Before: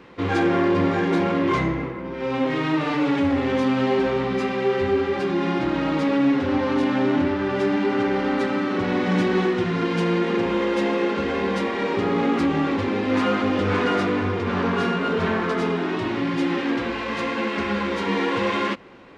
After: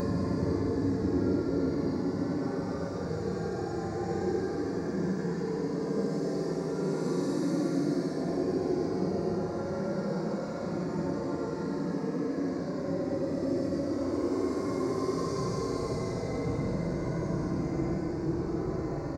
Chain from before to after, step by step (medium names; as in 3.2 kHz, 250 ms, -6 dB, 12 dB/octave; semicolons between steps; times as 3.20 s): FFT filter 210 Hz 0 dB, 1.9 kHz -14 dB, 3.1 kHz -29 dB, 4.5 kHz +1 dB; frequency-shifting echo 367 ms, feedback 58%, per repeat +99 Hz, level -6.5 dB; Paulstretch 20×, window 0.05 s, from 0.78 s; treble shelf 6.2 kHz +8 dB; trim -8.5 dB